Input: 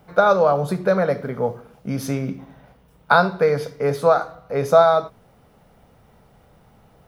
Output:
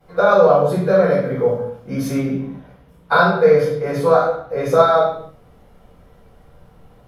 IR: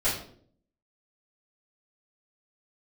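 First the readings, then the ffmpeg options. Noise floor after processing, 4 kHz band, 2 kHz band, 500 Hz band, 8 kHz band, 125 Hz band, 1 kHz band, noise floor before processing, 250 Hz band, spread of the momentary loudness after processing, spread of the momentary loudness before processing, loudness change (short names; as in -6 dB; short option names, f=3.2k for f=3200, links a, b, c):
-50 dBFS, +1.5 dB, +2.5 dB, +4.0 dB, n/a, +3.0 dB, +1.5 dB, -55 dBFS, +4.5 dB, 12 LU, 13 LU, +3.0 dB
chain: -filter_complex "[1:a]atrim=start_sample=2205,afade=t=out:st=0.29:d=0.01,atrim=end_sample=13230,asetrate=32193,aresample=44100[a];[0:a][a]afir=irnorm=-1:irlink=0,volume=-10.5dB"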